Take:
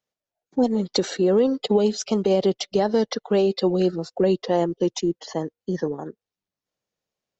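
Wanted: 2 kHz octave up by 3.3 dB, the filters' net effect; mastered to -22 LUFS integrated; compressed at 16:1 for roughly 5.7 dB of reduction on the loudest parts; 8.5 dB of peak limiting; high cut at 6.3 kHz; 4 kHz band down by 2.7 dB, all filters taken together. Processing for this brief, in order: low-pass 6.3 kHz; peaking EQ 2 kHz +5 dB; peaking EQ 4 kHz -4 dB; compression 16:1, threshold -20 dBFS; trim +8.5 dB; peak limiter -11.5 dBFS

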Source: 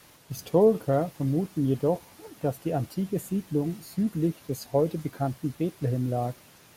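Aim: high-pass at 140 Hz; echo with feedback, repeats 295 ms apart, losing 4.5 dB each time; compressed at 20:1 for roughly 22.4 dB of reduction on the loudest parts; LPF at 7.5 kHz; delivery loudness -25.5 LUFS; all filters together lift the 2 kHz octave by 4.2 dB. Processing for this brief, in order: high-pass 140 Hz; low-pass 7.5 kHz; peaking EQ 2 kHz +5.5 dB; compression 20:1, threshold -37 dBFS; feedback delay 295 ms, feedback 60%, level -4.5 dB; trim +16 dB

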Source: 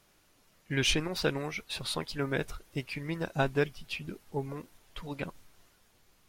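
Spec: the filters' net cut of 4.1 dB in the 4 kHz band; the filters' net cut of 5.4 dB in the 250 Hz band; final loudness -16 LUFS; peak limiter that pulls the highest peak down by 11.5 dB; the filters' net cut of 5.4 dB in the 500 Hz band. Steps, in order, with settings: peaking EQ 250 Hz -6.5 dB; peaking EQ 500 Hz -4.5 dB; peaking EQ 4 kHz -5.5 dB; trim +25 dB; peak limiter -3 dBFS

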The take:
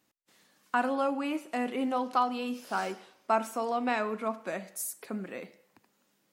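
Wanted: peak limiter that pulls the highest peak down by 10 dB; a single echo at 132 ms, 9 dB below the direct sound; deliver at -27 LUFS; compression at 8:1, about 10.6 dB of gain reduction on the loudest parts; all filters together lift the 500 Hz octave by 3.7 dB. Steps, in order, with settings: peaking EQ 500 Hz +4.5 dB; compression 8:1, threshold -31 dBFS; peak limiter -27.5 dBFS; delay 132 ms -9 dB; trim +11 dB

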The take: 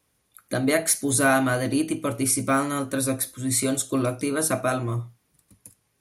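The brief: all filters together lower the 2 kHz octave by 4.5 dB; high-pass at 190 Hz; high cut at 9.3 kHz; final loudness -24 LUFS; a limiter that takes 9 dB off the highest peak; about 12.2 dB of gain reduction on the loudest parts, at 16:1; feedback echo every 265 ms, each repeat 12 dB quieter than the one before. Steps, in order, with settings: high-pass 190 Hz; low-pass 9.3 kHz; peaking EQ 2 kHz -7 dB; compression 16:1, threshold -30 dBFS; peak limiter -26.5 dBFS; feedback delay 265 ms, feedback 25%, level -12 dB; trim +12.5 dB

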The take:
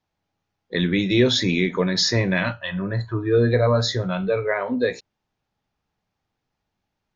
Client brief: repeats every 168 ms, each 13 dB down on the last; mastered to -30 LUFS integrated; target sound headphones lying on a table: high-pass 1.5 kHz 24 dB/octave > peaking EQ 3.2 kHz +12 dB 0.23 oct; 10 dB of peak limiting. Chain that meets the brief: peak limiter -16 dBFS; high-pass 1.5 kHz 24 dB/octave; peaking EQ 3.2 kHz +12 dB 0.23 oct; feedback delay 168 ms, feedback 22%, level -13 dB; trim -1.5 dB

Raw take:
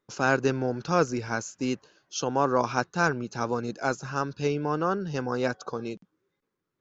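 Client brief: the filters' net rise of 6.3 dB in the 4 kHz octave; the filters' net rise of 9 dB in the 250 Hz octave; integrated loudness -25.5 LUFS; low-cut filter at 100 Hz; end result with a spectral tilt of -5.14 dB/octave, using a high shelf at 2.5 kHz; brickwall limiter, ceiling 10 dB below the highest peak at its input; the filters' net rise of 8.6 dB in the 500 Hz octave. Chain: high-pass 100 Hz; peaking EQ 250 Hz +8.5 dB; peaking EQ 500 Hz +7.5 dB; treble shelf 2.5 kHz +5 dB; peaking EQ 4 kHz +3.5 dB; trim -0.5 dB; peak limiter -13.5 dBFS

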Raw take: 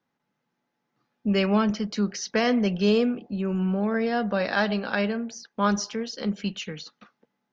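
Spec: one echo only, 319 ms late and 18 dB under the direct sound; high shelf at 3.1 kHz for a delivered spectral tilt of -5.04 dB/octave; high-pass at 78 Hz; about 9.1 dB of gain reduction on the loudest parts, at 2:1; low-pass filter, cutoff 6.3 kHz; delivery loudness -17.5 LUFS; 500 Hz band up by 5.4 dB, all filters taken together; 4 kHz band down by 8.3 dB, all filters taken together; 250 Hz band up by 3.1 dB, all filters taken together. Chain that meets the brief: high-pass 78 Hz; low-pass 6.3 kHz; peaking EQ 250 Hz +3 dB; peaking EQ 500 Hz +6 dB; treble shelf 3.1 kHz -8 dB; peaking EQ 4 kHz -5 dB; compression 2:1, threshold -30 dBFS; delay 319 ms -18 dB; trim +12 dB

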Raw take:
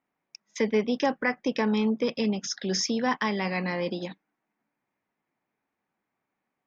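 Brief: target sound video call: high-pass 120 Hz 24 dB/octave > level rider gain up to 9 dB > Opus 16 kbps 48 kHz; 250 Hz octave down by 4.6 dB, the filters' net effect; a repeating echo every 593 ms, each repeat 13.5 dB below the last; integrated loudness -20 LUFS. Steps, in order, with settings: high-pass 120 Hz 24 dB/octave; peaking EQ 250 Hz -5.5 dB; feedback delay 593 ms, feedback 21%, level -13.5 dB; level rider gain up to 9 dB; trim +10 dB; Opus 16 kbps 48 kHz

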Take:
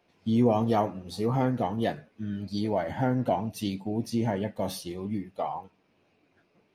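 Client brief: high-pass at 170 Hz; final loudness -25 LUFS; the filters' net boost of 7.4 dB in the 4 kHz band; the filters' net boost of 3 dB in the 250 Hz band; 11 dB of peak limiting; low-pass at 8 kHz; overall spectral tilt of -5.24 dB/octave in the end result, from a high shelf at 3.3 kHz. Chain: high-pass 170 Hz; low-pass 8 kHz; peaking EQ 250 Hz +4.5 dB; treble shelf 3.3 kHz +7.5 dB; peaking EQ 4 kHz +4 dB; trim +6.5 dB; peak limiter -14.5 dBFS

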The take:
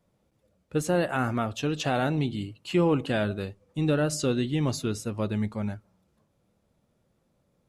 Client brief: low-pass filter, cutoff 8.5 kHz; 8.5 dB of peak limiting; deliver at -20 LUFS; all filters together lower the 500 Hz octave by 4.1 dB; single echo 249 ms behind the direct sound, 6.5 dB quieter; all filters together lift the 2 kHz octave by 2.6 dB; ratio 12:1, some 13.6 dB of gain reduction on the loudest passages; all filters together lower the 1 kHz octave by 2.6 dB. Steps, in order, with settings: low-pass 8.5 kHz; peaking EQ 500 Hz -4.5 dB; peaking EQ 1 kHz -4 dB; peaking EQ 2 kHz +6 dB; compression 12:1, threshold -35 dBFS; peak limiter -31.5 dBFS; delay 249 ms -6.5 dB; trim +21.5 dB

